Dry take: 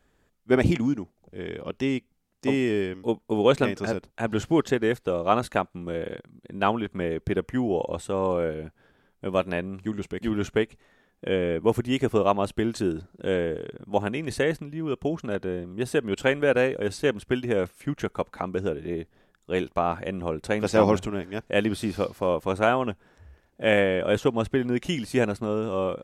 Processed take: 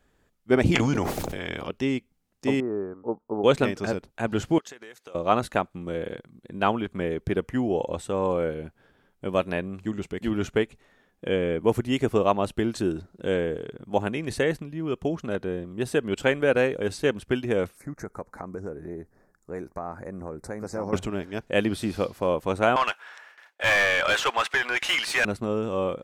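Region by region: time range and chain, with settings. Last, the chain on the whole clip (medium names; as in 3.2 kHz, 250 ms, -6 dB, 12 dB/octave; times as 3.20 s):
0.73–1.67 s: spectral peaks clipped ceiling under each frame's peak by 16 dB + decay stretcher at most 25 dB/s
2.60–3.44 s: elliptic low-pass 1.3 kHz, stop band 60 dB + tilt EQ +2.5 dB/octave
4.58–5.15 s: high-pass 1.3 kHz 6 dB/octave + compression 16:1, threshold -39 dBFS + peaking EQ 6.3 kHz +6.5 dB 0.25 oct
17.77–20.93 s: compression 2:1, threshold -36 dBFS + Butterworth band-stop 3.1 kHz, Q 0.96
22.76–25.25 s: high-pass 1.4 kHz + gate with hold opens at -58 dBFS, closes at -63 dBFS + overdrive pedal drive 29 dB, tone 1.9 kHz, clips at -10 dBFS
whole clip: none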